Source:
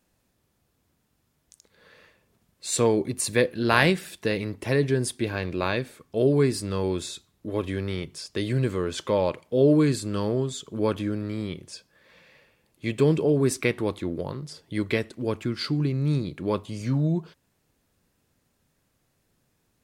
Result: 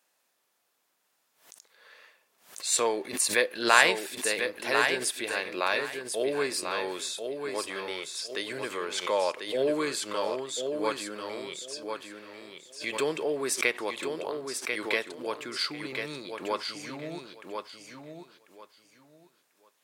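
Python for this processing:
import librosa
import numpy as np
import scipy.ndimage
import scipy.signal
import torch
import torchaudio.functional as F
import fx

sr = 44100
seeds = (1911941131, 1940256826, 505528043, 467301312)

p1 = scipy.signal.sosfilt(scipy.signal.butter(2, 680.0, 'highpass', fs=sr, output='sos'), x)
p2 = p1 + fx.echo_feedback(p1, sr, ms=1043, feedback_pct=21, wet_db=-6.0, dry=0)
p3 = fx.pre_swell(p2, sr, db_per_s=130.0)
y = p3 * 10.0 ** (1.5 / 20.0)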